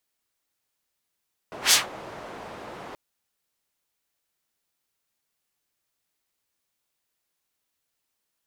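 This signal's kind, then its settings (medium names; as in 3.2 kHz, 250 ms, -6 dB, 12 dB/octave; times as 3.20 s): whoosh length 1.43 s, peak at 0.20 s, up 0.12 s, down 0.17 s, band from 680 Hz, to 5.8 kHz, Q 0.89, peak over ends 24 dB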